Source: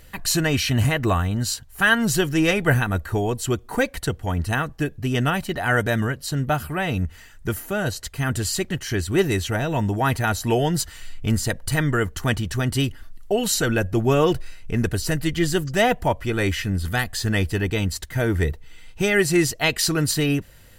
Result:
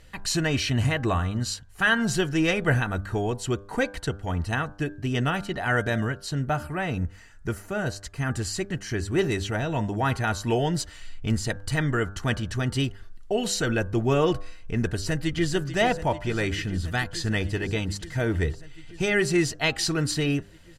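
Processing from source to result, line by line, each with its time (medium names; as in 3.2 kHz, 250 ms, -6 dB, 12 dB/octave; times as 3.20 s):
6.42–9.19 s: peaking EQ 3.4 kHz -6 dB 0.56 oct
14.87–15.53 s: echo throw 440 ms, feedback 85%, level -12.5 dB
whole clip: low-pass 7.6 kHz 12 dB/octave; de-hum 99.47 Hz, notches 17; trim -3.5 dB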